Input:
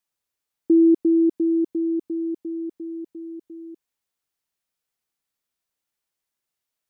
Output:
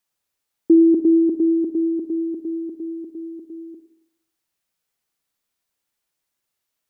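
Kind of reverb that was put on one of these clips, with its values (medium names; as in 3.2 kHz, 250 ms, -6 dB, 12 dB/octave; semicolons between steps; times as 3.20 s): Schroeder reverb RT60 0.76 s, DRR 8.5 dB; trim +4 dB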